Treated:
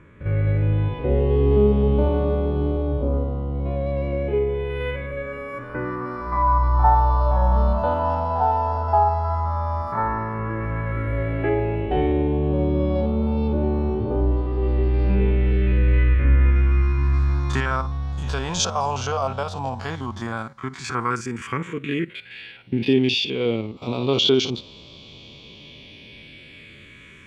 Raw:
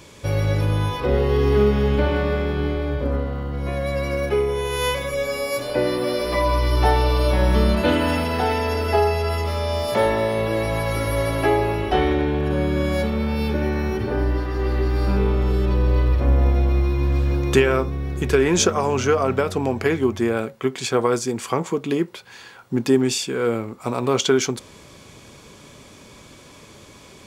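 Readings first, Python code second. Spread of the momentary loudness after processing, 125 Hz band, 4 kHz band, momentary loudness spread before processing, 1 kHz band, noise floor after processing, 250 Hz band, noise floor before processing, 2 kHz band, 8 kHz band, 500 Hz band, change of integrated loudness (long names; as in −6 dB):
13 LU, +0.5 dB, +0.5 dB, 6 LU, +2.0 dB, −45 dBFS, −2.0 dB, −46 dBFS, −4.5 dB, −6.5 dB, −3.5 dB, −1.0 dB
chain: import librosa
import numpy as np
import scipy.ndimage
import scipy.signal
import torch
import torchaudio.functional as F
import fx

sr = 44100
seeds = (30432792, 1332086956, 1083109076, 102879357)

y = fx.spec_steps(x, sr, hold_ms=50)
y = fx.high_shelf(y, sr, hz=2300.0, db=11.0)
y = fx.phaser_stages(y, sr, stages=4, low_hz=340.0, high_hz=1700.0, hz=0.092, feedback_pct=30)
y = fx.filter_sweep_lowpass(y, sr, from_hz=1100.0, to_hz=3100.0, start_s=14.23, end_s=16.9, q=1.4)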